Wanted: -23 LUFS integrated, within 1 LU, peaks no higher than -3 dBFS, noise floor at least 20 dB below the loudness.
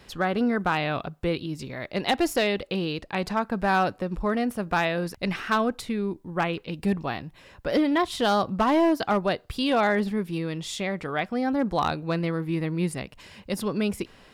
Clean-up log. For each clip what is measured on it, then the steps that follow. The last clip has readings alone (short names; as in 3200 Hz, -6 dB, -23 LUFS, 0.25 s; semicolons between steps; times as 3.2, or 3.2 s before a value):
clipped 0.5%; flat tops at -15.0 dBFS; loudness -26.5 LUFS; peak -15.0 dBFS; loudness target -23.0 LUFS
-> clip repair -15 dBFS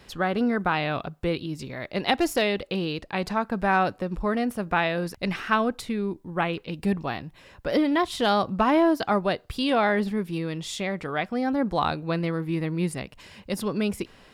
clipped 0.0%; loudness -26.0 LUFS; peak -7.0 dBFS; loudness target -23.0 LUFS
-> gain +3 dB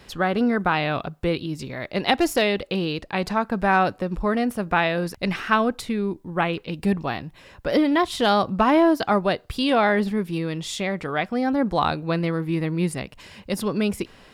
loudness -23.0 LUFS; peak -4.0 dBFS; noise floor -51 dBFS